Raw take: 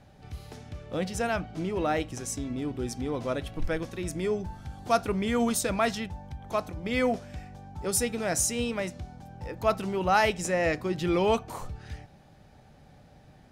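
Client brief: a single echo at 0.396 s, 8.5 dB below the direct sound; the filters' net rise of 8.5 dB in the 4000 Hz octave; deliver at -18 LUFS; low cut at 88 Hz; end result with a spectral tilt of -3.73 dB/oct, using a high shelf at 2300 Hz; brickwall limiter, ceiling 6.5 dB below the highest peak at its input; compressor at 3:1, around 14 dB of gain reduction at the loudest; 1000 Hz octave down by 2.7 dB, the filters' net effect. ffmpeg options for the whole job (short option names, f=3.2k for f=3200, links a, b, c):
-af "highpass=88,equalizer=f=1k:t=o:g=-5.5,highshelf=f=2.3k:g=6,equalizer=f=4k:t=o:g=6,acompressor=threshold=-36dB:ratio=3,alimiter=level_in=3.5dB:limit=-24dB:level=0:latency=1,volume=-3.5dB,aecho=1:1:396:0.376,volume=20.5dB"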